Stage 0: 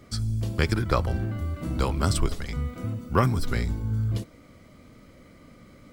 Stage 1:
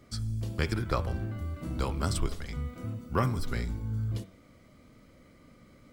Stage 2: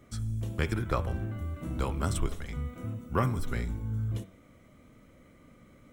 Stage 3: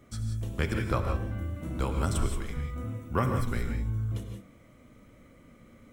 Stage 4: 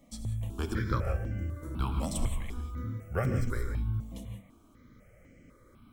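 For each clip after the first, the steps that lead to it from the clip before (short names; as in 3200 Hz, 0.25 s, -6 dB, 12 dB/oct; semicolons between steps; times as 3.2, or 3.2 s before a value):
de-hum 95.43 Hz, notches 39; gain -5.5 dB
bell 4700 Hz -13.5 dB 0.3 oct
non-linear reverb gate 0.2 s rising, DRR 4 dB
step phaser 4 Hz 390–3700 Hz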